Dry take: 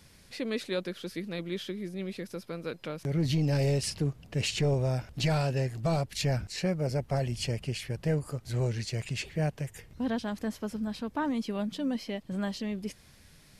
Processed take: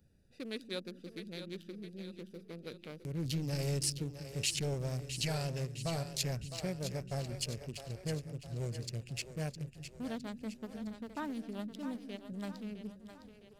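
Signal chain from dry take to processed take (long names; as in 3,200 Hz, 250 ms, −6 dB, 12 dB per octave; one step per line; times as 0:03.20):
adaptive Wiener filter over 41 samples
first-order pre-emphasis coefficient 0.8
echo with a time of its own for lows and highs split 320 Hz, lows 193 ms, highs 660 ms, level −9.5 dB
level +5 dB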